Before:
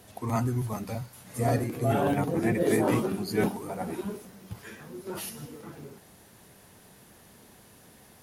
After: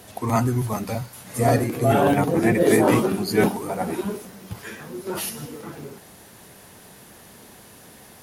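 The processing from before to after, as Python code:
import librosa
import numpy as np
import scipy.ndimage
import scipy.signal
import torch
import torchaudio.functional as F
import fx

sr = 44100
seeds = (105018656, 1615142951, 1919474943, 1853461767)

y = fx.low_shelf(x, sr, hz=210.0, db=-4.0)
y = F.gain(torch.from_numpy(y), 8.5).numpy()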